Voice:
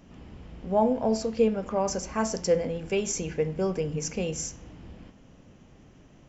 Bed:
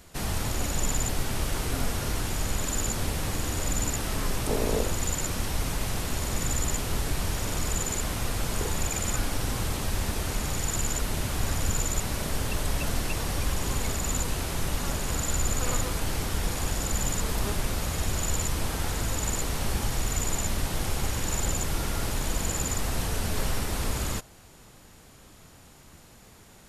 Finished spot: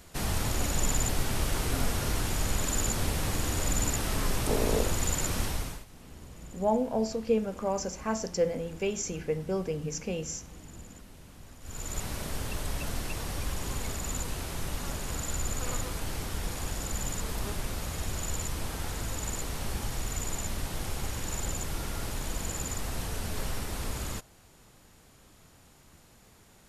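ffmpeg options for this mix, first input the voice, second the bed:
-filter_complex "[0:a]adelay=5900,volume=0.668[s0];[1:a]volume=7.08,afade=t=out:st=5.42:d=0.43:silence=0.0749894,afade=t=in:st=11.61:d=0.41:silence=0.133352[s1];[s0][s1]amix=inputs=2:normalize=0"

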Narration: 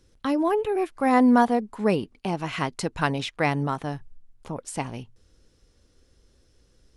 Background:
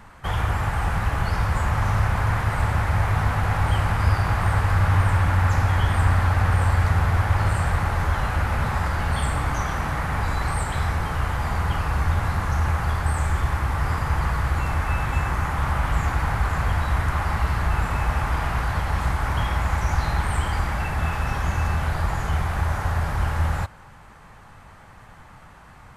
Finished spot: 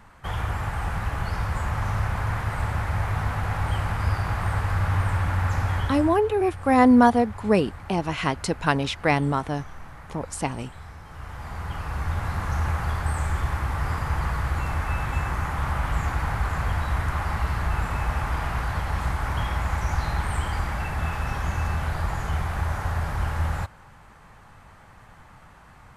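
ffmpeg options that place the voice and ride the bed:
-filter_complex "[0:a]adelay=5650,volume=1.33[s0];[1:a]volume=3.35,afade=t=out:st=5.75:d=0.44:silence=0.211349,afade=t=in:st=11.05:d=1.5:silence=0.177828[s1];[s0][s1]amix=inputs=2:normalize=0"

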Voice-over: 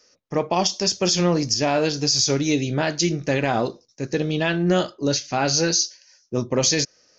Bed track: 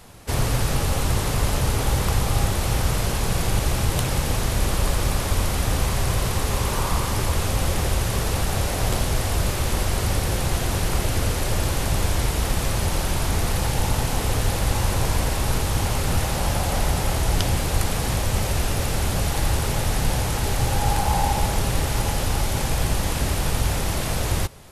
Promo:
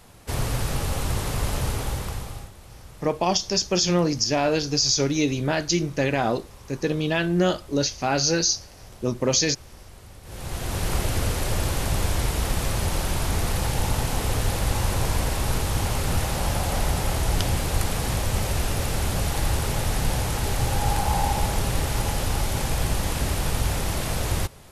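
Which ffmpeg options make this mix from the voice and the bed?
-filter_complex "[0:a]adelay=2700,volume=0.841[s0];[1:a]volume=7.08,afade=t=out:st=1.65:d=0.86:silence=0.112202,afade=t=in:st=10.23:d=0.69:silence=0.0891251[s1];[s0][s1]amix=inputs=2:normalize=0"

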